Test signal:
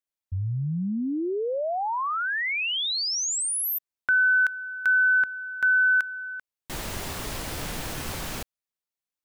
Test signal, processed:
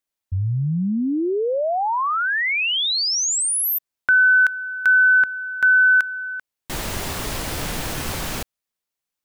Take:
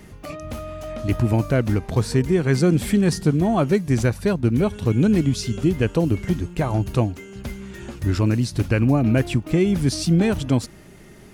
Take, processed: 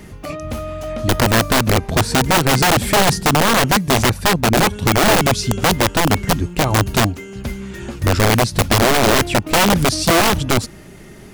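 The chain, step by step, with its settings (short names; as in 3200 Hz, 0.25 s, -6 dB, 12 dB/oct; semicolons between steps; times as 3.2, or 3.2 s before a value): wrapped overs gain 14 dB; gain +6 dB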